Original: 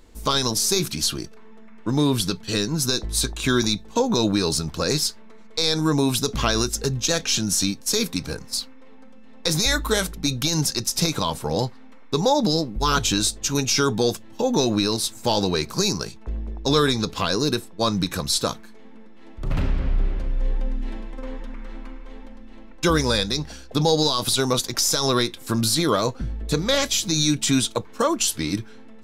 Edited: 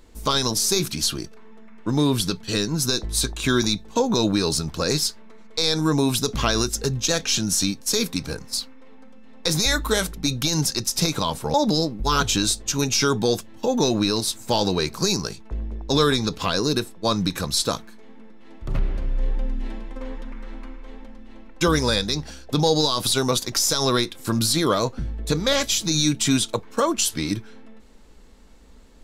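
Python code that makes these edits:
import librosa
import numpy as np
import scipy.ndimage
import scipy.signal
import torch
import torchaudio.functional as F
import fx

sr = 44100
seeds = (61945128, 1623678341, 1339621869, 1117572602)

y = fx.edit(x, sr, fx.cut(start_s=11.54, length_s=0.76),
    fx.cut(start_s=19.55, length_s=0.46), tone=tone)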